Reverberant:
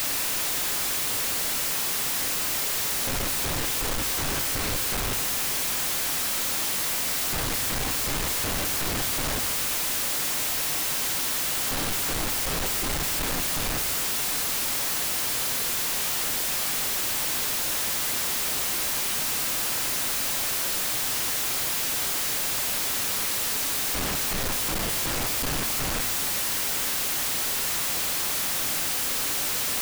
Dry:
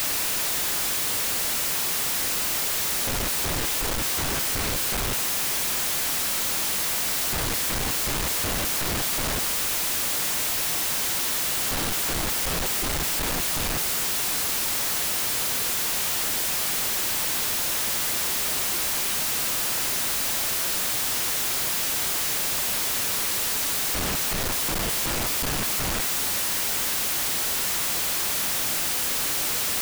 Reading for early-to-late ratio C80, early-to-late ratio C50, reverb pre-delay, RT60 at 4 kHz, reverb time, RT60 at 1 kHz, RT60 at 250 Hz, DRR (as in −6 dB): 13.5 dB, 12.0 dB, 4 ms, 0.95 s, 1.5 s, 1.4 s, 2.1 s, 10.0 dB